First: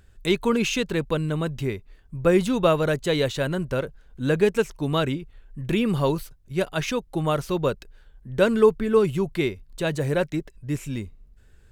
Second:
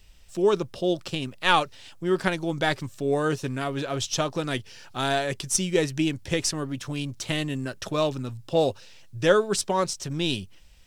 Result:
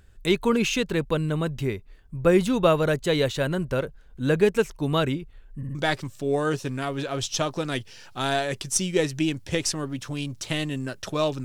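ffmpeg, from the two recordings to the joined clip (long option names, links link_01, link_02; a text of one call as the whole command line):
ffmpeg -i cue0.wav -i cue1.wav -filter_complex "[0:a]apad=whole_dur=11.44,atrim=end=11.44,asplit=3[link_01][link_02][link_03];[link_01]atrim=end=5.632[link_04];[link_02]atrim=start=5.568:end=5.632[link_05];[link_03]atrim=start=5.568:end=5.632[link_06];[1:a]atrim=start=2.538:end=8.23[link_07];[link_04][link_05]acrossfade=duration=0.004:curve1=hsin:curve2=hsin[link_08];[link_08][link_06]acrossfade=duration=0.004:curve1=hsin:curve2=hsin[link_09];[link_09][link_07]acrossfade=duration=0.004:curve1=hsin:curve2=hsin" out.wav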